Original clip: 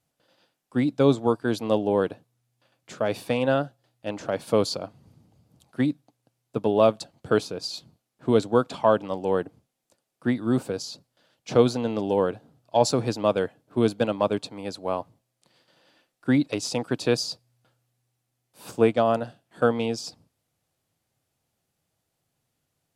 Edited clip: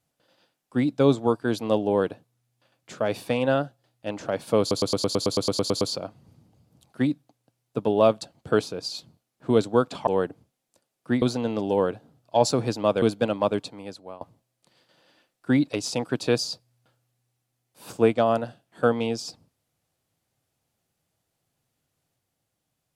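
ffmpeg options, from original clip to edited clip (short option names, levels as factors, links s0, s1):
-filter_complex "[0:a]asplit=16[s0][s1][s2][s3][s4][s5][s6][s7][s8][s9][s10][s11][s12][s13][s14][s15];[s0]atrim=end=4.712[s16];[s1]atrim=start=4.598:end=4.712[s17];[s2]atrim=start=4.598:end=4.712[s18];[s3]atrim=start=4.598:end=4.712[s19];[s4]atrim=start=4.598:end=4.712[s20];[s5]atrim=start=4.598:end=4.712[s21];[s6]atrim=start=4.598:end=4.712[s22];[s7]atrim=start=4.598:end=4.712[s23];[s8]atrim=start=4.598:end=4.712[s24];[s9]atrim=start=4.598:end=4.712[s25];[s10]atrim=start=4.598:end=4.712[s26];[s11]atrim=start=4.598:end=8.862[s27];[s12]atrim=start=9.228:end=10.382[s28];[s13]atrim=start=11.618:end=13.422[s29];[s14]atrim=start=13.808:end=15,asetpts=PTS-STARTPTS,afade=t=out:st=0.572:d=0.62:silence=0.0891251[s30];[s15]atrim=start=15,asetpts=PTS-STARTPTS,afade=t=in:d=0.004:c=hsin:silence=0.0891251[s31];[s16][s17]acrossfade=d=0.004:c1=hsin:c2=hsin[s32];[s32][s18]acrossfade=d=0.004:c1=hsin:c2=hsin[s33];[s33][s19]acrossfade=d=0.004:c1=hsin:c2=hsin[s34];[s34][s20]acrossfade=d=0.004:c1=hsin:c2=hsin[s35];[s35][s21]acrossfade=d=0.004:c1=hsin:c2=hsin[s36];[s36][s22]acrossfade=d=0.004:c1=hsin:c2=hsin[s37];[s37][s23]acrossfade=d=0.004:c1=hsin:c2=hsin[s38];[s38][s24]acrossfade=d=0.004:c1=hsin:c2=hsin[s39];[s39][s25]acrossfade=d=0.004:c1=hsin:c2=hsin[s40];[s40][s26]acrossfade=d=0.004:c1=hsin:c2=hsin[s41];[s41][s27]acrossfade=d=0.004:c1=hsin:c2=hsin[s42];[s42][s28]acrossfade=d=0.004:c1=hsin:c2=hsin[s43];[s43][s29]acrossfade=d=0.004:c1=hsin:c2=hsin[s44];[s30][s31]concat=n=2:v=0:a=1[s45];[s44][s45]acrossfade=d=0.004:c1=hsin:c2=hsin"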